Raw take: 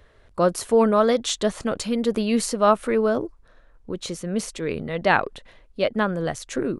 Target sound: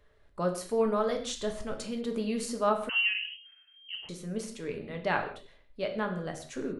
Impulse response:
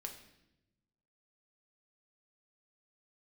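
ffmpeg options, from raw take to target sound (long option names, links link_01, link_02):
-filter_complex "[0:a]asplit=3[link_01][link_02][link_03];[link_01]afade=type=out:start_time=0.8:duration=0.02[link_04];[link_02]asubboost=boost=7:cutoff=100,afade=type=in:start_time=0.8:duration=0.02,afade=type=out:start_time=1.73:duration=0.02[link_05];[link_03]afade=type=in:start_time=1.73:duration=0.02[link_06];[link_04][link_05][link_06]amix=inputs=3:normalize=0[link_07];[1:a]atrim=start_sample=2205,afade=type=out:start_time=0.24:duration=0.01,atrim=end_sample=11025[link_08];[link_07][link_08]afir=irnorm=-1:irlink=0,asettb=1/sr,asplit=3[link_09][link_10][link_11];[link_09]atrim=end=2.894[link_12];[link_10]atrim=start=2.89:end=4.09,asetpts=PTS-STARTPTS,afade=type=in:duration=0.004:curve=qsin,afade=type=out:start_time=1.196:duration=0.004:curve=qsin,lowpass=frequency=2700:width_type=q:width=0.5098,lowpass=frequency=2700:width_type=q:width=0.6013,lowpass=frequency=2700:width_type=q:width=0.9,lowpass=frequency=2700:width_type=q:width=2.563,afreqshift=-3200[link_13];[link_11]atrim=start=4.086[link_14];[link_12][link_13]acrossfade=duration=0.004:curve1=hsin:curve2=qsin[link_15];[link_15][link_14]acrossfade=duration=0.004:curve1=qsin:curve2=hsin,volume=-7dB"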